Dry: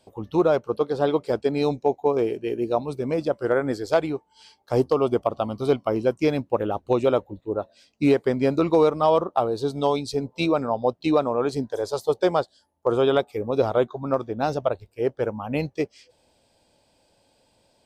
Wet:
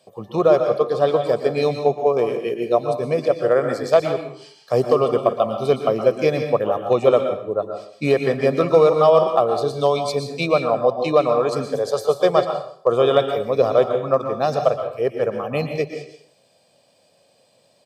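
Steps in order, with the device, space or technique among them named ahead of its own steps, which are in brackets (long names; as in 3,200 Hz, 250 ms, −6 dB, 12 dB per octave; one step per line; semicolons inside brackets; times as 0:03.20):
microphone above a desk (comb filter 1.7 ms, depth 59%; convolution reverb RT60 0.60 s, pre-delay 111 ms, DRR 5 dB)
high-pass filter 130 Hz 24 dB per octave
level +2.5 dB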